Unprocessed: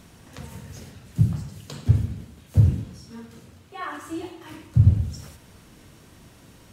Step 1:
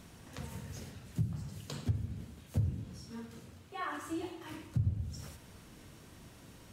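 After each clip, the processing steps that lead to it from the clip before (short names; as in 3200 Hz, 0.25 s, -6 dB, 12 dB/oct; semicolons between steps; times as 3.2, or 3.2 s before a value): compressor 2.5:1, threshold -29 dBFS, peak gain reduction 13 dB; gain -4.5 dB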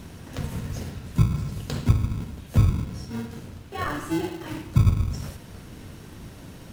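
octaver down 1 oct, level -6 dB; bell 7600 Hz -3 dB 0.41 oct; in parallel at -3 dB: sample-and-hold 37×; on the sum: gain +8 dB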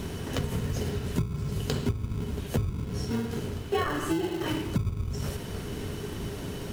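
compressor 8:1, threshold -32 dBFS, peak gain reduction 19.5 dB; small resonant body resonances 410/3000 Hz, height 13 dB, ringing for 0.1 s; gain +6 dB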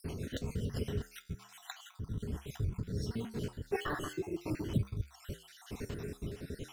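random spectral dropouts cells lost 53%; rotary speaker horn 7.5 Hz, later 1 Hz, at 2.87; flange 0.4 Hz, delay 6.7 ms, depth 7.1 ms, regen -83%; gain +1.5 dB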